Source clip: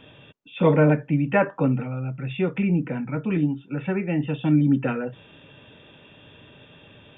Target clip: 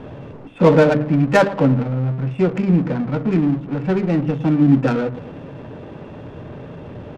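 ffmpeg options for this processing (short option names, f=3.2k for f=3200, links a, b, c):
-af "aeval=exprs='val(0)+0.5*0.0251*sgn(val(0))':c=same,bandreject=f=50:t=h:w=6,bandreject=f=100:t=h:w=6,bandreject=f=150:t=h:w=6,bandreject=f=200:t=h:w=6,bandreject=f=250:t=h:w=6,bandreject=f=300:t=h:w=6,aecho=1:1:109|218|327|436:0.168|0.0755|0.034|0.0153,adynamicsmooth=sensitivity=1.5:basefreq=560,volume=6dB"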